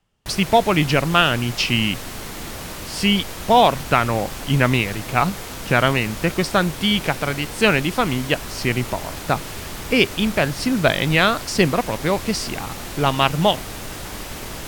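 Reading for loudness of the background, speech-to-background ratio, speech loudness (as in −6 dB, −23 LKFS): −31.5 LKFS, 11.5 dB, −20.0 LKFS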